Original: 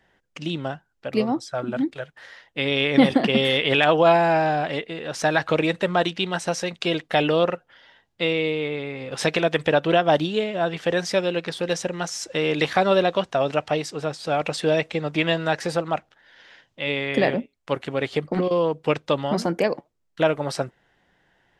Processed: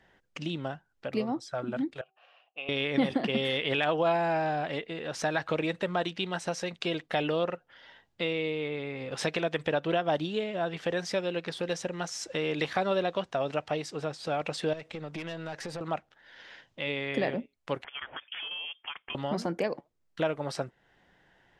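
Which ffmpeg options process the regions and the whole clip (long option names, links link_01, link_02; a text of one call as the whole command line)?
ffmpeg -i in.wav -filter_complex "[0:a]asettb=1/sr,asplit=3[link_01][link_02][link_03];[link_01]atrim=end=2.014[link_04];[link_02]atrim=start=2.01:end=2.69,asetpts=PTS-STARTPTS,afade=type=in:duration=0.004:curve=qsin,afade=type=out:start_time=0.676:duration=0.004:curve=qsin,asplit=3[link_05][link_06][link_07];[link_05]bandpass=frequency=730:width_type=q:width=8,volume=0dB[link_08];[link_06]bandpass=frequency=1090:width_type=q:width=8,volume=-6dB[link_09];[link_07]bandpass=frequency=2440:width_type=q:width=8,volume=-9dB[link_10];[link_08][link_09][link_10]amix=inputs=3:normalize=0,equalizer=frequency=2800:width_type=o:width=0.22:gain=11.5,bandreject=frequency=383.8:width_type=h:width=4,bandreject=frequency=767.6:width_type=h:width=4[link_11];[link_03]atrim=start=2.686[link_12];[link_04][link_11]acrossfade=duration=0.004:curve1=hsin:curve2=qsin[link_13];[link_13][link_12]acrossfade=duration=0.004:curve1=qsin:curve2=hsin,asettb=1/sr,asplit=3[link_14][link_15][link_16];[link_14]atrim=end=14.734[link_17];[link_15]atrim=start=14.73:end=15.81,asetpts=PTS-STARTPTS,afade=type=in:duration=0.004:curve=qsin,afade=type=out:start_time=1.076:duration=0.004:curve=qsin,aeval=exprs='(tanh(7.94*val(0)+0.35)-tanh(0.35))/7.94':channel_layout=same,acompressor=threshold=-32dB:ratio=3:attack=3.2:release=140:knee=1:detection=peak[link_18];[link_16]atrim=start=15.806[link_19];[link_17][link_18]acrossfade=duration=0.004:curve1=hsin:curve2=qsin[link_20];[link_20][link_19]acrossfade=duration=0.004:curve1=qsin:curve2=hsin,asettb=1/sr,asplit=3[link_21][link_22][link_23];[link_21]atrim=end=17.844[link_24];[link_22]atrim=start=17.84:end=19.15,asetpts=PTS-STARTPTS,afade=type=in:duration=0.004:curve=qsin,afade=type=out:start_time=1.306:duration=0.004:curve=qsin,highpass=940,acompressor=threshold=-29dB:ratio=6:attack=3.2:release=140:knee=1:detection=peak,lowpass=frequency=3100:width_type=q:width=0.5098,lowpass=frequency=3100:width_type=q:width=0.6013,lowpass=frequency=3100:width_type=q:width=0.9,lowpass=frequency=3100:width_type=q:width=2.563,afreqshift=-3700[link_25];[link_23]atrim=start=19.146[link_26];[link_24][link_25]acrossfade=duration=0.004:curve1=hsin:curve2=qsin[link_27];[link_27][link_26]acrossfade=duration=0.004:curve1=qsin:curve2=hsin,highshelf=frequency=9300:gain=-6.5,acompressor=threshold=-41dB:ratio=1.5" out.wav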